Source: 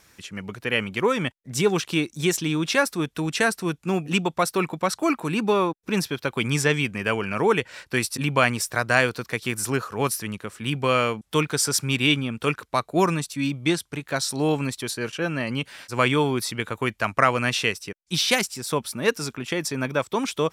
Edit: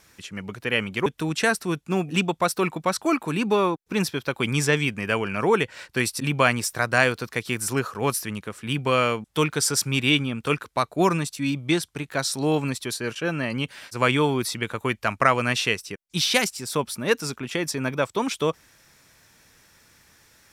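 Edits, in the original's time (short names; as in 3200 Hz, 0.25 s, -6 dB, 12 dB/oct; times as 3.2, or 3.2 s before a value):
1.06–3.03 cut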